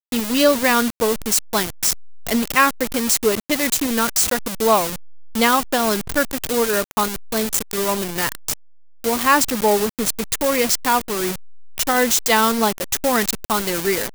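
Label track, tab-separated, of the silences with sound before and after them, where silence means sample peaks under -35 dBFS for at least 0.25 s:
8.540000	9.040000	silence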